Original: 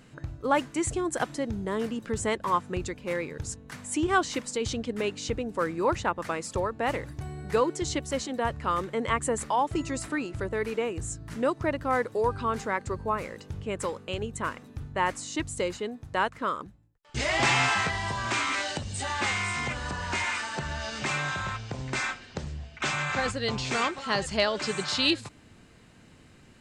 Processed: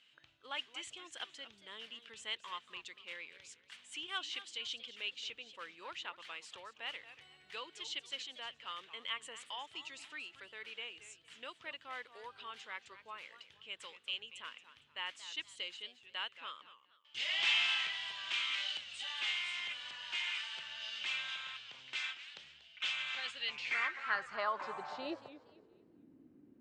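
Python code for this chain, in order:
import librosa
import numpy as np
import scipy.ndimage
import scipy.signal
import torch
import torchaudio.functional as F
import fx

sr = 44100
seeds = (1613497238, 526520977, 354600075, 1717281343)

y = fx.filter_sweep_bandpass(x, sr, from_hz=3100.0, to_hz=290.0, start_s=23.29, end_s=26.05, q=4.7)
y = fx.echo_warbled(y, sr, ms=232, feedback_pct=30, rate_hz=2.8, cents=177, wet_db=-14)
y = y * 10.0 ** (2.0 / 20.0)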